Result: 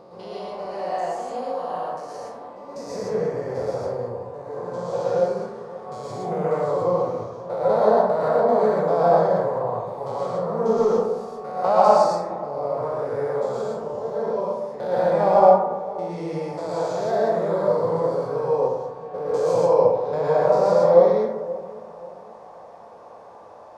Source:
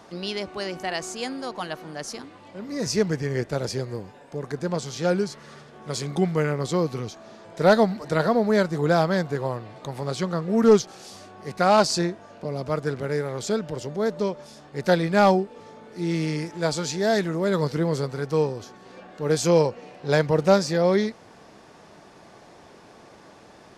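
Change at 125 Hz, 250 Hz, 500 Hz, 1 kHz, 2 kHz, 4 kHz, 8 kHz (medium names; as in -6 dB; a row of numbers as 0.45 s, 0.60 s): -6.5 dB, -6.5 dB, +4.5 dB, +5.5 dB, -8.0 dB, under -10 dB, under -10 dB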